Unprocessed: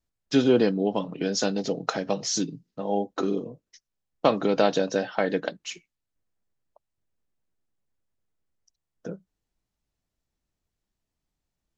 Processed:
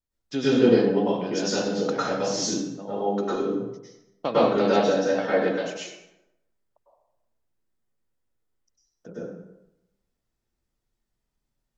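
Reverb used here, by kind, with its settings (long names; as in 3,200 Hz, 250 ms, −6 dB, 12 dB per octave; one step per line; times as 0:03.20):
dense smooth reverb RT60 0.89 s, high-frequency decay 0.65×, pre-delay 90 ms, DRR −9.5 dB
level −8 dB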